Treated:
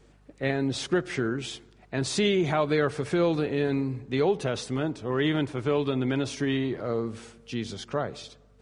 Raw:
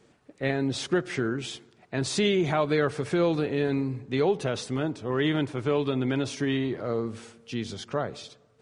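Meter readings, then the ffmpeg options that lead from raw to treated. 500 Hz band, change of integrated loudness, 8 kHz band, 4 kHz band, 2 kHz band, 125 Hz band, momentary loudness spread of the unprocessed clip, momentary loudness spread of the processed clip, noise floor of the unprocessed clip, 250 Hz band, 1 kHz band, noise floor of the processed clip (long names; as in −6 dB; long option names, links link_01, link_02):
0.0 dB, 0.0 dB, 0.0 dB, 0.0 dB, 0.0 dB, 0.0 dB, 10 LU, 10 LU, −62 dBFS, 0.0 dB, 0.0 dB, −58 dBFS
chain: -af "aeval=exprs='val(0)+0.00126*(sin(2*PI*50*n/s)+sin(2*PI*2*50*n/s)/2+sin(2*PI*3*50*n/s)/3+sin(2*PI*4*50*n/s)/4+sin(2*PI*5*50*n/s)/5)':channel_layout=same"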